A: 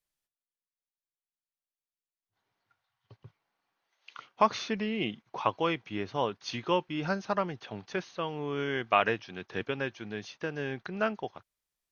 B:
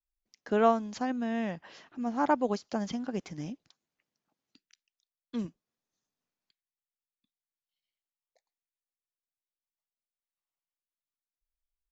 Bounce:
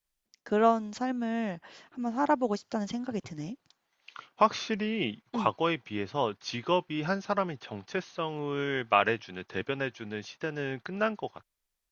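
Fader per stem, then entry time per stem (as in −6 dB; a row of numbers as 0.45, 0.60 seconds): +1.0, +0.5 decibels; 0.00, 0.00 seconds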